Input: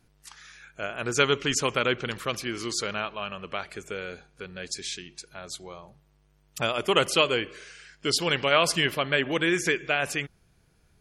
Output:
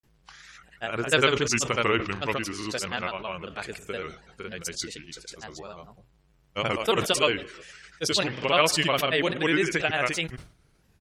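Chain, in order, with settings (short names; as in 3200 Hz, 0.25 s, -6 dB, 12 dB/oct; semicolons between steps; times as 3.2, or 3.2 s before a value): grains, pitch spread up and down by 3 st; sustainer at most 130 dB/s; gain +1.5 dB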